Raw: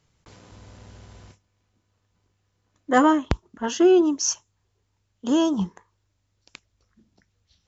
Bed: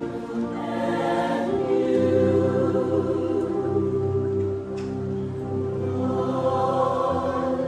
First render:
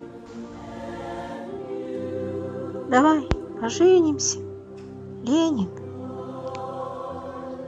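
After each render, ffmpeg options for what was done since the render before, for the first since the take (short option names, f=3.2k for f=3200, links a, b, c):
-filter_complex "[1:a]volume=-10dB[a];[0:a][a]amix=inputs=2:normalize=0"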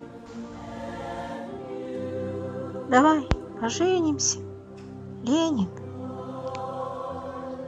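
-af "equalizer=f=360:t=o:w=0.26:g=-9"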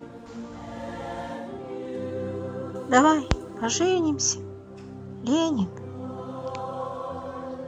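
-filter_complex "[0:a]asettb=1/sr,asplit=3[a][b][c];[a]atrim=end=2.754[d];[b]atrim=start=2.75:end=3.94,asetpts=PTS-STARTPTS,afade=t=in:d=0.004:c=qsin,afade=t=out:st=1.186:d=0.004:c=qsin,aemphasis=mode=production:type=50kf[e];[c]atrim=start=3.936[f];[d][e]acrossfade=d=0.004:c1=hsin:c2=qsin[g];[g][f]acrossfade=d=0.004:c1=qsin:c2=hsin"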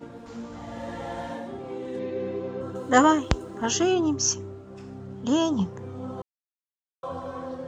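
-filter_complex "[0:a]asettb=1/sr,asplit=3[a][b][c];[a]atrim=end=1.994[d];[b]atrim=start=1.99:end=2.61,asetpts=PTS-STARTPTS,afade=t=in:d=0.004:c=qsin,afade=t=out:st=0.616:d=0.004:c=qsin,highpass=150,equalizer=f=400:t=q:w=4:g=4,equalizer=f=1.4k:t=q:w=4:g=-8,equalizer=f=2.3k:t=q:w=4:g=9,lowpass=f=5.7k:w=0.5412,lowpass=f=5.7k:w=1.3066[e];[c]atrim=start=2.606[f];[d][e]acrossfade=d=0.004:c1=hsin:c2=qsin[g];[g][f]acrossfade=d=0.004:c1=qsin:c2=hsin,asplit=3[h][i][j];[h]atrim=end=6.22,asetpts=PTS-STARTPTS,afade=t=out:st=6.216:d=0.004:c=hsin[k];[i]atrim=start=6.22:end=7.03,asetpts=PTS-STARTPTS,volume=0[l];[j]atrim=start=7.03,asetpts=PTS-STARTPTS,afade=t=in:d=0.004:c=hsin[m];[k][l][m]concat=n=3:v=0:a=1"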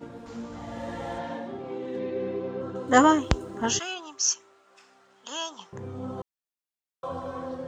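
-filter_complex "[0:a]asettb=1/sr,asplit=3[a][b][c];[a]atrim=end=1.184[d];[b]atrim=start=1.18:end=2.88,asetpts=PTS-STARTPTS,afade=t=in:d=0.004:c=qsin,afade=t=out:st=1.696:d=0.004:c=qsin,highpass=110,lowpass=5.4k[e];[c]atrim=start=2.876[f];[d][e]acrossfade=d=0.004:c1=hsin:c2=qsin[g];[g][f]acrossfade=d=0.004:c1=qsin:c2=hsin,asettb=1/sr,asplit=3[h][i][j];[h]atrim=end=3.794[k];[i]atrim=start=3.79:end=5.73,asetpts=PTS-STARTPTS,afade=t=in:d=0.004:c=qsin,afade=t=out:st=1.936:d=0.004:c=qsin,highpass=1.2k[l];[j]atrim=start=5.726[m];[k][l]acrossfade=d=0.004:c1=hsin:c2=qsin[n];[n][m]acrossfade=d=0.004:c1=qsin:c2=hsin"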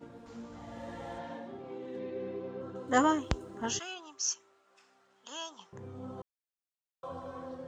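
-af "volume=-8dB"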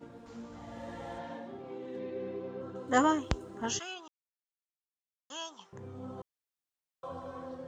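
-filter_complex "[0:a]asplit=3[a][b][c];[a]atrim=end=4.08,asetpts=PTS-STARTPTS,afade=t=out:st=4.076:d=0.004:c=hsin[d];[b]atrim=start=4.08:end=5.3,asetpts=PTS-STARTPTS,volume=0[e];[c]atrim=start=5.3,asetpts=PTS-STARTPTS,afade=t=in:d=0.004:c=hsin[f];[d][e][f]concat=n=3:v=0:a=1"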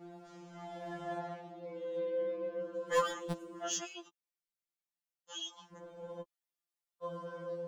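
-filter_complex "[0:a]acrossover=split=600[a][b];[b]asoftclip=type=hard:threshold=-26.5dB[c];[a][c]amix=inputs=2:normalize=0,afftfilt=real='re*2.83*eq(mod(b,8),0)':imag='im*2.83*eq(mod(b,8),0)':win_size=2048:overlap=0.75"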